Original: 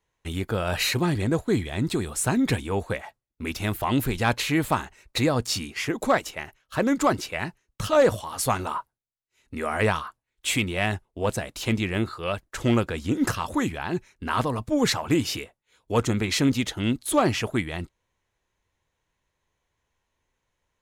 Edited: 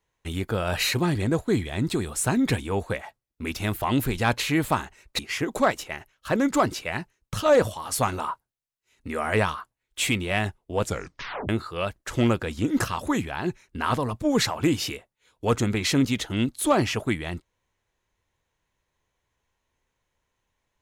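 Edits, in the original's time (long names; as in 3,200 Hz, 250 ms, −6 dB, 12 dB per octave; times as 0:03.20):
0:05.19–0:05.66: remove
0:11.29: tape stop 0.67 s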